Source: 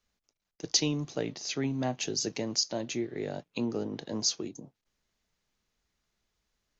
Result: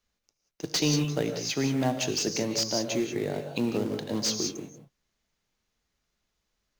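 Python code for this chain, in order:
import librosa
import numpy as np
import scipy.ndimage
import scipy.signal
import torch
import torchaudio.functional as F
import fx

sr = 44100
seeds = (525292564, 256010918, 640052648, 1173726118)

p1 = fx.quant_companded(x, sr, bits=4)
p2 = x + (p1 * librosa.db_to_amplitude(-5.5))
p3 = fx.rev_gated(p2, sr, seeds[0], gate_ms=210, shape='rising', drr_db=6.0)
y = fx.slew_limit(p3, sr, full_power_hz=310.0)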